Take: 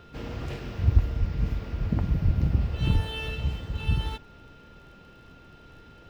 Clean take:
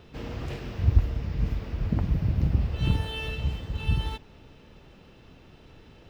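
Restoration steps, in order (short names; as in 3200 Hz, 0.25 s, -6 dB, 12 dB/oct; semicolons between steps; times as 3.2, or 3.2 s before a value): de-click; notch 1400 Hz, Q 30; de-plosive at 1.19/2.24/2.93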